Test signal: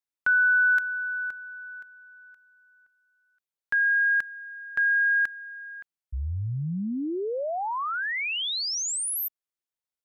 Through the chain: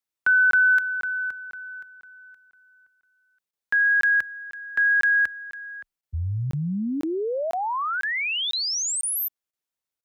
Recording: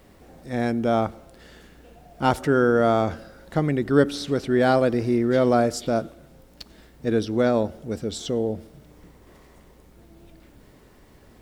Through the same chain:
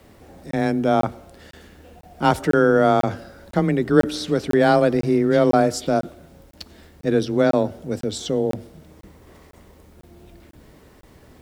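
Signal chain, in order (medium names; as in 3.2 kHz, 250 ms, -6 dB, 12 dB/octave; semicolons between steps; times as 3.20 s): frequency shift +17 Hz; crackling interface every 0.50 s, samples 1024, zero, from 0.51 s; trim +3 dB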